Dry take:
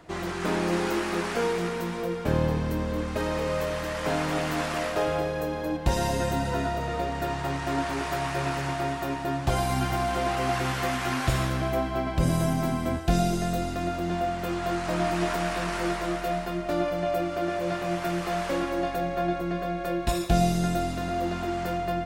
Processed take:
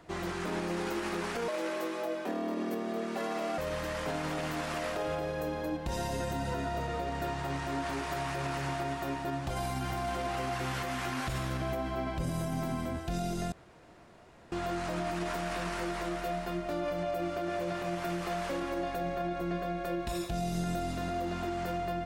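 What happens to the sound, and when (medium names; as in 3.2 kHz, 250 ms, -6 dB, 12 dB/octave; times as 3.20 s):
1.48–3.58 s: frequency shift +150 Hz
13.52–14.52 s: room tone
whole clip: peak limiter -21.5 dBFS; trim -4 dB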